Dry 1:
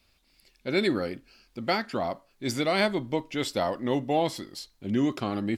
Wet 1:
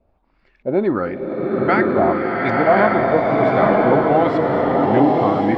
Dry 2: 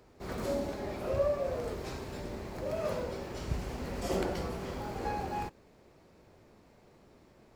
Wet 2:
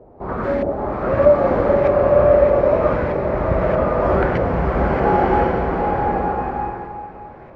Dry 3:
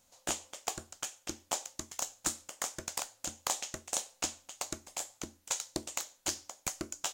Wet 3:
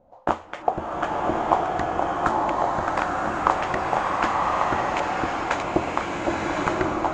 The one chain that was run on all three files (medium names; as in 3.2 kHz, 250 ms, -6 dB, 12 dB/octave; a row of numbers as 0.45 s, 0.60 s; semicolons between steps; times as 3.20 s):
LFO low-pass saw up 1.6 Hz 590–2100 Hz; swelling reverb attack 1100 ms, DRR -3.5 dB; peak normalisation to -2 dBFS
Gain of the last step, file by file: +6.0 dB, +11.5 dB, +13.0 dB